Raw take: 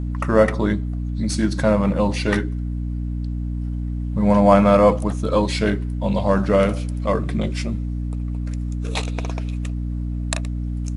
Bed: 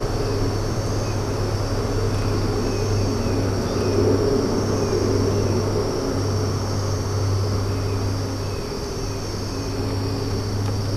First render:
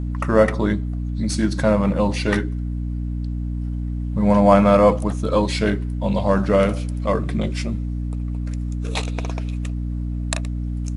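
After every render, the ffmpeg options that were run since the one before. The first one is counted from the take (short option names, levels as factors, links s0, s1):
-af anull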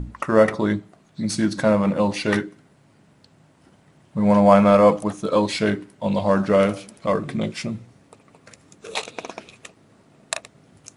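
-af "bandreject=f=60:t=h:w=6,bandreject=f=120:t=h:w=6,bandreject=f=180:t=h:w=6,bandreject=f=240:t=h:w=6,bandreject=f=300:t=h:w=6"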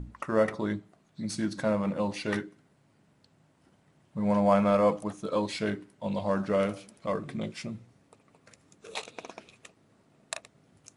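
-af "volume=0.335"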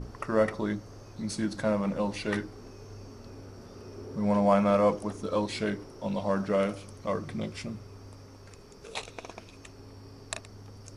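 -filter_complex "[1:a]volume=0.0596[s0];[0:a][s0]amix=inputs=2:normalize=0"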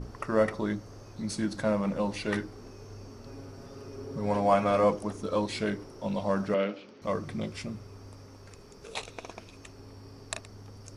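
-filter_complex "[0:a]asettb=1/sr,asplit=3[s0][s1][s2];[s0]atrim=end=3.264[s3];[s1]atrim=start=3.26:end=4.84,asetpts=PTS-STARTPTS,afade=t=in:d=0.004:c=qsin,afade=t=out:st=1.576:d=0.004:c=qsin,aecho=1:1:7.3:0.56,atrim=end_sample=69678[s4];[s2]atrim=start=4.836[s5];[s3][s4]acrossfade=d=0.004:c1=hsin:c2=qsin[s6];[s6][s5]acrossfade=d=0.004:c1=qsin:c2=hsin,asettb=1/sr,asplit=3[s7][s8][s9];[s7]atrim=end=6.544[s10];[s8]atrim=start=6.54:end=7.02,asetpts=PTS-STARTPTS,afade=t=in:d=0.004:c=qsin,afade=t=out:st=0.476:d=0.004:c=qsin,highpass=f=200:w=0.5412,highpass=f=200:w=1.3066,equalizer=f=710:t=q:w=4:g=-4,equalizer=f=1100:t=q:w=4:g=-6,equalizer=f=2700:t=q:w=4:g=3,lowpass=f=4300:w=0.5412,lowpass=f=4300:w=1.3066[s11];[s9]atrim=start=7.016[s12];[s10][s11]acrossfade=d=0.004:c1=hsin:c2=qsin[s13];[s13][s12]acrossfade=d=0.004:c1=qsin:c2=hsin"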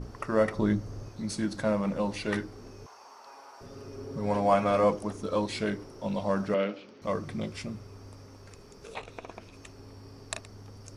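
-filter_complex "[0:a]asettb=1/sr,asplit=3[s0][s1][s2];[s0]atrim=end=0.564[s3];[s1]atrim=start=0.56:end=1.09,asetpts=PTS-STARTPTS,afade=t=in:d=0.004:c=qsin,afade=t=out:st=0.526:d=0.004:c=qsin,lowshelf=f=250:g=10[s4];[s2]atrim=start=1.086[s5];[s3][s4]acrossfade=d=0.004:c1=hsin:c2=qsin[s6];[s6][s5]acrossfade=d=0.004:c1=qsin:c2=hsin,asettb=1/sr,asplit=3[s7][s8][s9];[s7]atrim=end=2.864[s10];[s8]atrim=start=2.86:end=3.61,asetpts=PTS-STARTPTS,afade=t=in:d=0.004:c=qsin,afade=t=out:st=0.746:d=0.004:c=qsin,highpass=f=900:t=q:w=3.7[s11];[s9]atrim=start=3.606[s12];[s10][s11]acrossfade=d=0.004:c1=hsin:c2=qsin[s13];[s13][s12]acrossfade=d=0.004:c1=qsin:c2=hsin,asettb=1/sr,asplit=3[s14][s15][s16];[s14]atrim=end=8.954[s17];[s15]atrim=start=8.95:end=9.54,asetpts=PTS-STARTPTS,afade=t=in:d=0.004:c=qsin,afade=t=out:st=0.586:d=0.004:c=qsin,acrossover=split=2700[s18][s19];[s19]acompressor=threshold=0.00158:ratio=4:attack=1:release=60[s20];[s18][s20]amix=inputs=2:normalize=0[s21];[s16]atrim=start=9.536[s22];[s17][s21]acrossfade=d=0.004:c1=hsin:c2=qsin[s23];[s23][s22]acrossfade=d=0.004:c1=qsin:c2=hsin"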